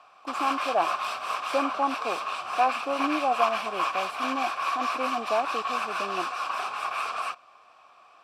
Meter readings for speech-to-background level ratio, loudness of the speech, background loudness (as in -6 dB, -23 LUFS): -1.0 dB, -30.5 LUFS, -29.5 LUFS